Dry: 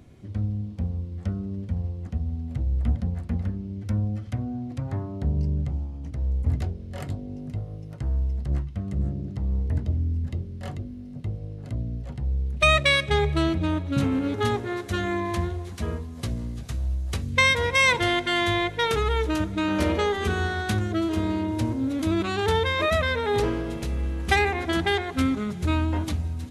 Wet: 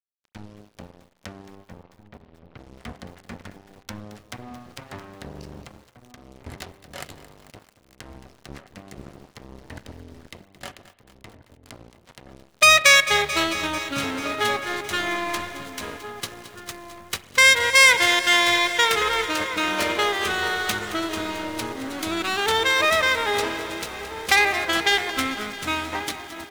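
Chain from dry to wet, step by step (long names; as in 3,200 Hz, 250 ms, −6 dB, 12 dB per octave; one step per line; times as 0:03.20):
stylus tracing distortion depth 0.095 ms
high-pass filter 1,300 Hz 6 dB per octave
in parallel at −1.5 dB: downward compressor 12 to 1, threshold −43 dBFS, peak gain reduction 26.5 dB
on the sum: dead-zone distortion −42 dBFS
0:01.55–0:02.59: high-frequency loss of the air 310 metres
slap from a distant wall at 280 metres, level −11 dB
spring reverb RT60 1.2 s, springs 33 ms, chirp 30 ms, DRR 16 dB
boost into a limiter +10 dB
feedback echo at a low word length 221 ms, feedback 80%, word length 7 bits, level −14 dB
level −1.5 dB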